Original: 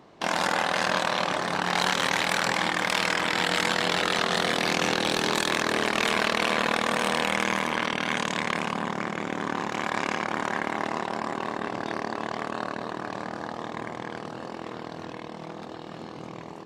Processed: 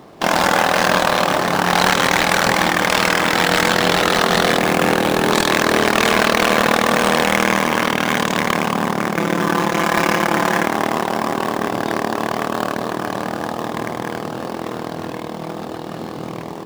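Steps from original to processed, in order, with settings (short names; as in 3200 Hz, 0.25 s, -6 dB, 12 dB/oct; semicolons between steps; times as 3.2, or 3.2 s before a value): 4.58–5.32 median filter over 9 samples; 9.16–10.66 comb 5.9 ms, depth 74%; in parallel at -5 dB: sample-rate reducer 4200 Hz, jitter 20%; on the sum: notch 970 Hz, Q 20; gain +7.5 dB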